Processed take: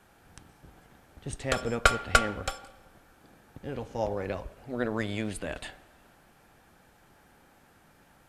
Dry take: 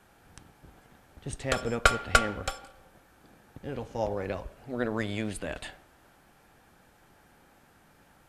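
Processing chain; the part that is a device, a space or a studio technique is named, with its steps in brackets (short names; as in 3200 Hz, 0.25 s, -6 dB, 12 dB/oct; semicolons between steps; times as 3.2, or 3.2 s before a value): compressed reverb return (on a send at -14 dB: reverb RT60 1.4 s, pre-delay 0.115 s + compressor, threshold -45 dBFS, peak gain reduction 23.5 dB)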